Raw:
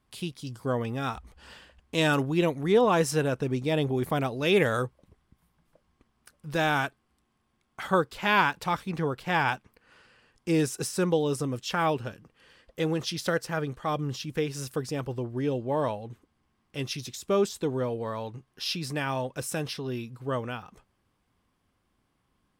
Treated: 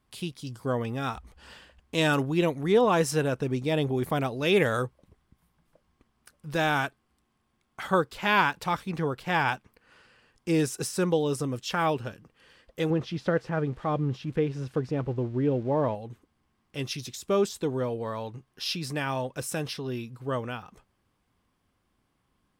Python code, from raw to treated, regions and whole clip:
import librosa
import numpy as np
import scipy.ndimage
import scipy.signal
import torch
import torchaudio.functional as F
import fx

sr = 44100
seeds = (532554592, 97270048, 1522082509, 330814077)

y = fx.chain(x, sr, fx.crossing_spikes(level_db=-31.5),
    fx.lowpass(hz=2700.0, slope=12),
    fx.tilt_shelf(db=4.0, hz=850.0), at=(12.9, 15.95))